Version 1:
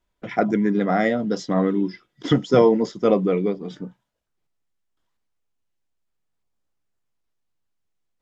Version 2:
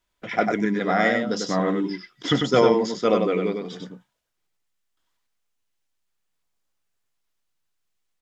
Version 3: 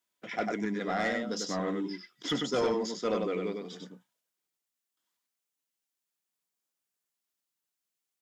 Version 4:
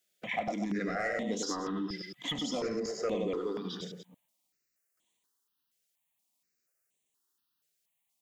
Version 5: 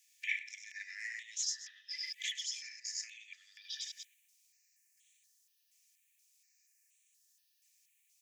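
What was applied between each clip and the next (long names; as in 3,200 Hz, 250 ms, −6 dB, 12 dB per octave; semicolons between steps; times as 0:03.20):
tilt shelving filter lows −5 dB, about 890 Hz; single-tap delay 97 ms −4.5 dB
Chebyshev high-pass filter 200 Hz, order 2; high-shelf EQ 5,900 Hz +10.5 dB; soft clipping −13.5 dBFS, distortion −15 dB; level −8 dB
delay that plays each chunk backwards 112 ms, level −9.5 dB; downward compressor, threshold −35 dBFS, peak gain reduction 10.5 dB; step-sequenced phaser 4.2 Hz 270–5,000 Hz; level +7 dB
downward compressor, threshold −41 dBFS, peak gain reduction 13 dB; Chebyshev high-pass with heavy ripple 1,700 Hz, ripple 9 dB; level +13.5 dB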